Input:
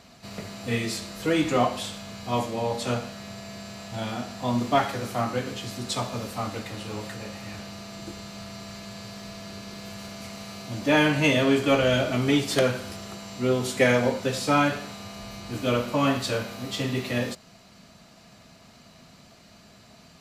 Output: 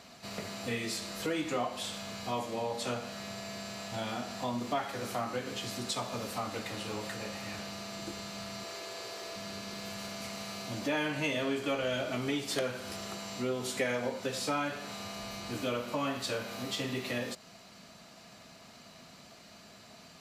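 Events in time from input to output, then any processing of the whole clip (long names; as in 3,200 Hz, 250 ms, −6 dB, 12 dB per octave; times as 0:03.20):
0:08.64–0:09.36: low shelf with overshoot 270 Hz −9.5 dB, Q 3
whole clip: low-shelf EQ 160 Hz −10 dB; downward compressor 2.5 to 1, threshold −34 dBFS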